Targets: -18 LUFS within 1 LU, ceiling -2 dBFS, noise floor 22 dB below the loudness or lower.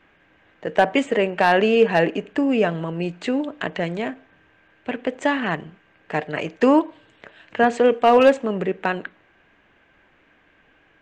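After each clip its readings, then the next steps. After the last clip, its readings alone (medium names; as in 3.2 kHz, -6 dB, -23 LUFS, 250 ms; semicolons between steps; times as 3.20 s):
loudness -20.5 LUFS; peak level -5.5 dBFS; loudness target -18.0 LUFS
-> trim +2.5 dB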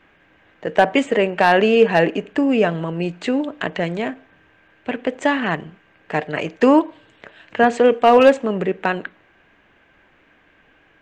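loudness -18.0 LUFS; peak level -3.0 dBFS; noise floor -56 dBFS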